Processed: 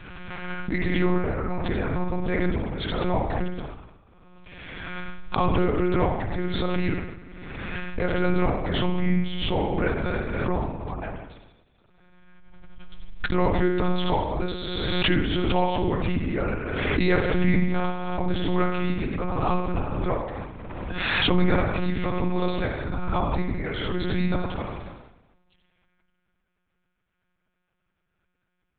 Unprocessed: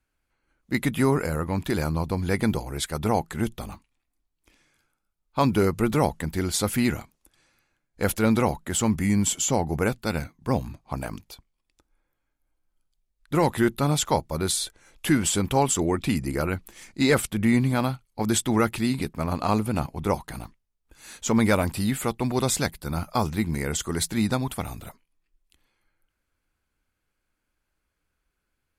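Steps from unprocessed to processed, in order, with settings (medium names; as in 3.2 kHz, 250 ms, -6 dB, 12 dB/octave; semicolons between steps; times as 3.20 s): reverberation RT60 1.0 s, pre-delay 48 ms, DRR 1.5 dB; monotone LPC vocoder at 8 kHz 180 Hz; swell ahead of each attack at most 26 dB/s; trim -2.5 dB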